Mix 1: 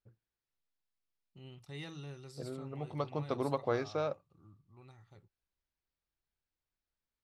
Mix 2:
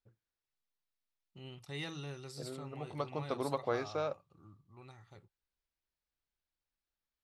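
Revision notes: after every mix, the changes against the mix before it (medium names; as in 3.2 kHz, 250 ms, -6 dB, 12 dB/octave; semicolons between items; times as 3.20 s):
first voice +5.5 dB; master: add bass shelf 340 Hz -5 dB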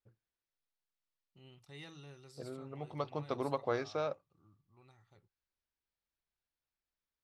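first voice -9.0 dB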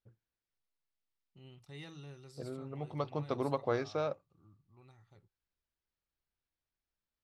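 master: add bass shelf 340 Hz +5 dB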